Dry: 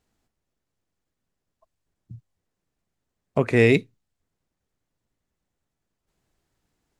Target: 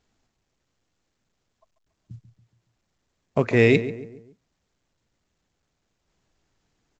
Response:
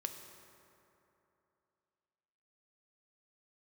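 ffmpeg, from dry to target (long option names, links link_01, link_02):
-filter_complex "[0:a]asplit=2[link_01][link_02];[link_02]adelay=140,lowpass=frequency=1600:poles=1,volume=-12.5dB,asplit=2[link_03][link_04];[link_04]adelay=140,lowpass=frequency=1600:poles=1,volume=0.44,asplit=2[link_05][link_06];[link_06]adelay=140,lowpass=frequency=1600:poles=1,volume=0.44,asplit=2[link_07][link_08];[link_08]adelay=140,lowpass=frequency=1600:poles=1,volume=0.44[link_09];[link_01][link_03][link_05][link_07][link_09]amix=inputs=5:normalize=0" -ar 16000 -c:a pcm_mulaw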